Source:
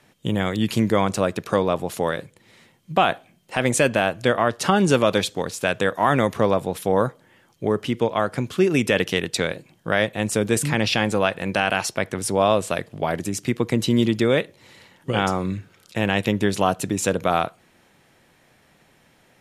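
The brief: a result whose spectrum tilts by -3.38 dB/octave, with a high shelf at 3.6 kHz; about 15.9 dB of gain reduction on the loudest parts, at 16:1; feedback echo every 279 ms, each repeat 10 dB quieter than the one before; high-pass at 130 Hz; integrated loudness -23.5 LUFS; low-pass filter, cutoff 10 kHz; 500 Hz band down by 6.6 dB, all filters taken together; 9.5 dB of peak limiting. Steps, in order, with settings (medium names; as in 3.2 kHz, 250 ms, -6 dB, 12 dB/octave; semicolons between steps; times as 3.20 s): high-pass 130 Hz; low-pass 10 kHz; peaking EQ 500 Hz -8.5 dB; treble shelf 3.6 kHz +7 dB; compression 16:1, threshold -31 dBFS; peak limiter -24 dBFS; feedback delay 279 ms, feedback 32%, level -10 dB; trim +14 dB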